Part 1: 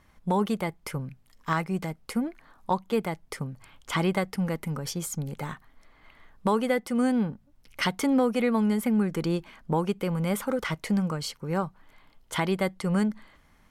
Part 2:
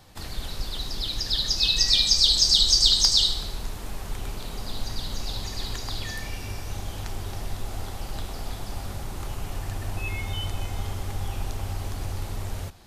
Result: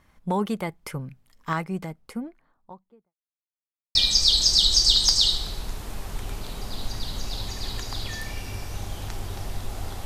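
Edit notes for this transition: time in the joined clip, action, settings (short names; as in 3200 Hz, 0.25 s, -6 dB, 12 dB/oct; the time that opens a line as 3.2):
part 1
1.42–3.15 studio fade out
3.15–3.95 mute
3.95 switch to part 2 from 1.91 s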